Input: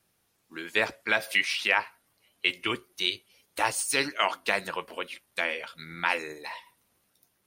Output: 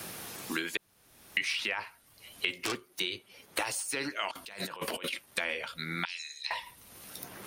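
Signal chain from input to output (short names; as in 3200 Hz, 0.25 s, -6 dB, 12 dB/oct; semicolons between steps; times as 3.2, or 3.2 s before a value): 0.77–1.37 room tone; 2.56–3 self-modulated delay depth 0.32 ms; limiter -17.5 dBFS, peak gain reduction 9.5 dB; 4.31–5.13 negative-ratio compressor -47 dBFS, ratio -1; 6.05–6.51 Butterworth band-pass 4800 Hz, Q 1.3; three-band squash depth 100%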